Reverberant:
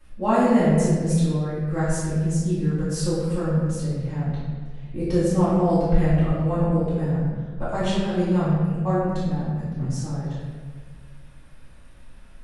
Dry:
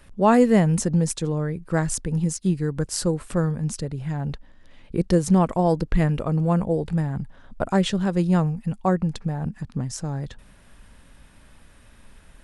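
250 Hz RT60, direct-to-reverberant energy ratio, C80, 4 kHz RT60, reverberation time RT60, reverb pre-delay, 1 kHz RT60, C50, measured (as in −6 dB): 1.8 s, −14.0 dB, 0.5 dB, 1.0 s, 1.7 s, 3 ms, 1.4 s, −2.0 dB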